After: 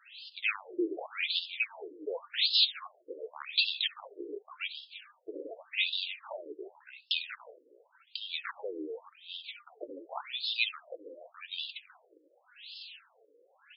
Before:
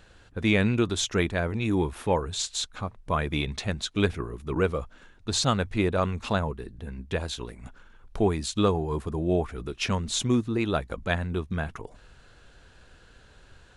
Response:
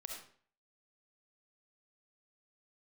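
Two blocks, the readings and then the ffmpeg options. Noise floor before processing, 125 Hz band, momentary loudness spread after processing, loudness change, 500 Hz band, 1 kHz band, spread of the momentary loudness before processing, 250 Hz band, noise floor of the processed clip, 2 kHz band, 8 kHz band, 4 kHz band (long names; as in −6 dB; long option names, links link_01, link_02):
−55 dBFS, below −40 dB, 19 LU, −5.5 dB, −13.5 dB, −14.5 dB, 12 LU, −17.5 dB, −68 dBFS, −3.0 dB, below −40 dB, +2.5 dB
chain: -filter_complex "[0:a]acrossover=split=3700[link_01][link_02];[link_02]acompressor=threshold=-46dB:ratio=4:attack=1:release=60[link_03];[link_01][link_03]amix=inputs=2:normalize=0,aemphasis=mode=production:type=50kf,bandreject=frequency=50:width_type=h:width=6,bandreject=frequency=100:width_type=h:width=6,bandreject=frequency=150:width_type=h:width=6,acrossover=split=320|3000[link_04][link_05][link_06];[link_05]acompressor=threshold=-41dB:ratio=2.5[link_07];[link_04][link_07][link_06]amix=inputs=3:normalize=0,flanger=delay=3.1:depth=6.1:regen=55:speed=0.57:shape=sinusoidal,asplit=2[link_08][link_09];[link_09]adelay=314.9,volume=-14dB,highshelf=frequency=4000:gain=-7.08[link_10];[link_08][link_10]amix=inputs=2:normalize=0,asplit=2[link_11][link_12];[link_12]volume=30.5dB,asoftclip=hard,volume=-30.5dB,volume=-8dB[link_13];[link_11][link_13]amix=inputs=2:normalize=0,flanger=delay=1.5:depth=3:regen=32:speed=0.27:shape=sinusoidal,aexciter=amount=7.5:drive=4:freq=2400,aeval=exprs='0.112*(abs(mod(val(0)/0.112+3,4)-2)-1)':channel_layout=same,asplit=2[link_14][link_15];[1:a]atrim=start_sample=2205,afade=type=out:start_time=0.18:duration=0.01,atrim=end_sample=8379,adelay=70[link_16];[link_15][link_16]afir=irnorm=-1:irlink=0,volume=-14.5dB[link_17];[link_14][link_17]amix=inputs=2:normalize=0,afftfilt=real='re*between(b*sr/1024,390*pow(3800/390,0.5+0.5*sin(2*PI*0.88*pts/sr))/1.41,390*pow(3800/390,0.5+0.5*sin(2*PI*0.88*pts/sr))*1.41)':imag='im*between(b*sr/1024,390*pow(3800/390,0.5+0.5*sin(2*PI*0.88*pts/sr))/1.41,390*pow(3800/390,0.5+0.5*sin(2*PI*0.88*pts/sr))*1.41)':win_size=1024:overlap=0.75,volume=4dB"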